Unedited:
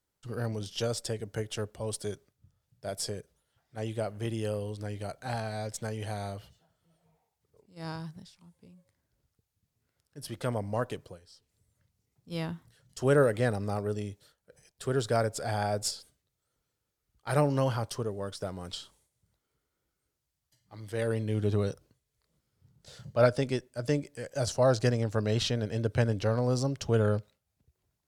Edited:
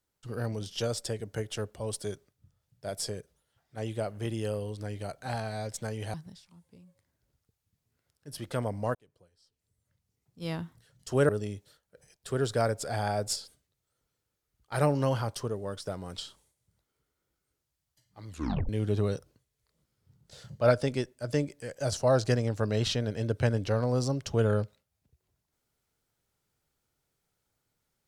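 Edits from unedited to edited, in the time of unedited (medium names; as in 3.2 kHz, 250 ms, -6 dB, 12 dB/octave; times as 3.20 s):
6.14–8.04 s: delete
10.85–12.45 s: fade in
13.19–13.84 s: delete
20.83 s: tape stop 0.41 s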